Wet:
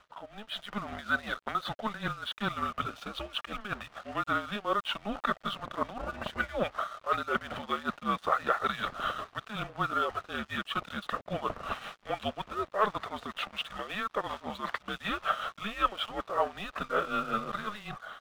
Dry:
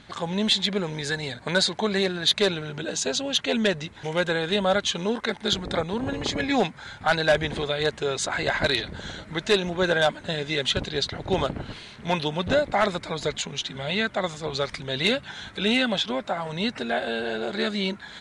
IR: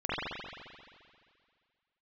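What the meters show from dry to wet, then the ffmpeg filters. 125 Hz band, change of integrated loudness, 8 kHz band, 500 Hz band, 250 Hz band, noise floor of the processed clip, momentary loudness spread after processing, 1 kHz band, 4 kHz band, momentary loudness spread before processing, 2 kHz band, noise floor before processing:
−12.0 dB, −8.5 dB, −21.0 dB, −11.5 dB, −11.5 dB, −61 dBFS, 8 LU, −1.0 dB, −13.0 dB, 8 LU, −7.5 dB, −46 dBFS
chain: -af "areverse,acompressor=threshold=-34dB:ratio=8,areverse,highpass=490,equalizer=frequency=560:width_type=q:width=4:gain=-9,equalizer=frequency=830:width_type=q:width=4:gain=5,equalizer=frequency=1400:width_type=q:width=4:gain=9,equalizer=frequency=2300:width_type=q:width=4:gain=-6,lowpass=frequency=3000:width=0.5412,lowpass=frequency=3000:width=1.3066,afreqshift=-210,tremolo=f=5.3:d=0.67,aeval=exprs='sgn(val(0))*max(abs(val(0))-0.001,0)':channel_layout=same,dynaudnorm=framelen=120:gausssize=7:maxgain=13.5dB,volume=-3dB"

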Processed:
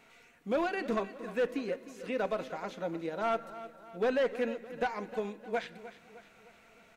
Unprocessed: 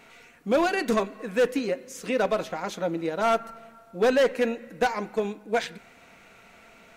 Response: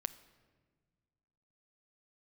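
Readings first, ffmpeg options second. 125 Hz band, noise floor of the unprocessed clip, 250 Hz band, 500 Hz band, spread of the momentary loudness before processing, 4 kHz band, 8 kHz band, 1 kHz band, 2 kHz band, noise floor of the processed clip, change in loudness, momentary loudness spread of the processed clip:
−8.0 dB, −54 dBFS, −8.0 dB, −8.0 dB, 9 LU, −10.5 dB, below −15 dB, −8.0 dB, −8.0 dB, −61 dBFS, −8.0 dB, 14 LU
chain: -filter_complex "[0:a]acrossover=split=3800[link_01][link_02];[link_02]acompressor=threshold=-50dB:ratio=4:attack=1:release=60[link_03];[link_01][link_03]amix=inputs=2:normalize=0,asplit=2[link_04][link_05];[link_05]aecho=0:1:307|614|921|1228|1535:0.178|0.0889|0.0445|0.0222|0.0111[link_06];[link_04][link_06]amix=inputs=2:normalize=0,volume=-8dB"

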